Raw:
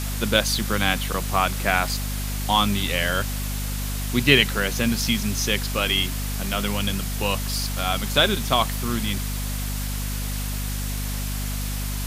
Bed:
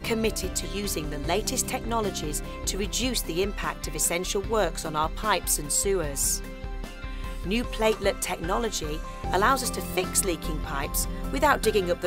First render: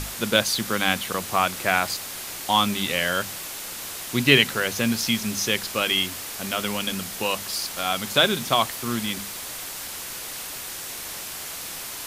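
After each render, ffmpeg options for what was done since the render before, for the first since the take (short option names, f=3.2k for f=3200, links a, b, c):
-af "bandreject=f=50:t=h:w=6,bandreject=f=100:t=h:w=6,bandreject=f=150:t=h:w=6,bandreject=f=200:t=h:w=6,bandreject=f=250:t=h:w=6"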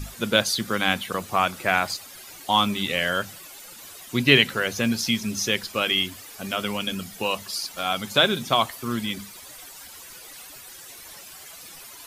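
-af "afftdn=nr=13:nf=-35"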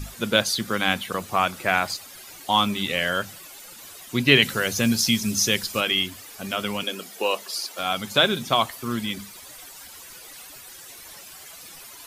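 -filter_complex "[0:a]asettb=1/sr,asplit=3[a][b][c];[a]atrim=end=4.424[d];[b]atrim=start=4.42:end=5.81,asetpts=PTS-STARTPTS,afade=t=in:d=0.004:c=qsin,afade=t=out:st=1.386:d=0.004:c=qsin,bass=f=250:g=4,treble=f=4k:g=7[e];[c]atrim=start=5.806[f];[d][e]acrossfade=d=0.004:c1=hsin:c2=qsin[g];[g][f]acrossfade=d=0.004:c1=qsin:c2=hsin,asettb=1/sr,asplit=3[h][i][j];[h]atrim=end=6.834[k];[i]atrim=start=6.83:end=7.79,asetpts=PTS-STARTPTS,afade=t=in:d=0.004:c=qsin,afade=t=out:st=0.956:d=0.004:c=qsin,highpass=f=390:t=q:w=1.6[l];[j]atrim=start=7.786[m];[k][l]acrossfade=d=0.004:c1=hsin:c2=qsin[n];[n][m]acrossfade=d=0.004:c1=qsin:c2=hsin"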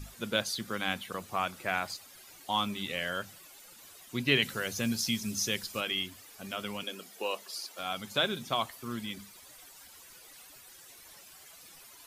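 -af "volume=-10dB"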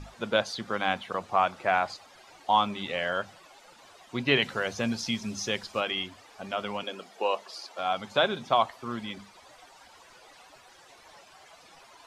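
-af "lowpass=5.4k,equalizer=f=780:w=0.86:g=10.5"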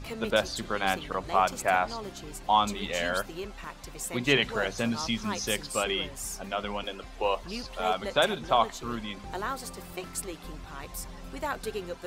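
-filter_complex "[1:a]volume=-11.5dB[a];[0:a][a]amix=inputs=2:normalize=0"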